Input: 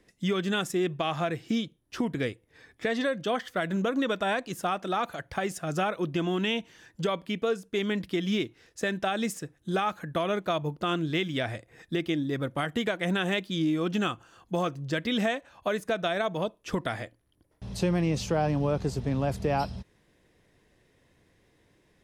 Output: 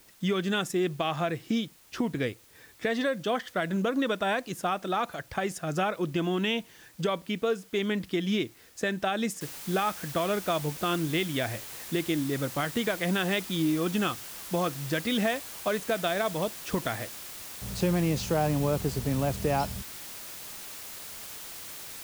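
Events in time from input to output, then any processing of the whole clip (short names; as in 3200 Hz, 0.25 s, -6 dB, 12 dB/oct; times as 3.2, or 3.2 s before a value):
9.41 noise floor step -58 dB -42 dB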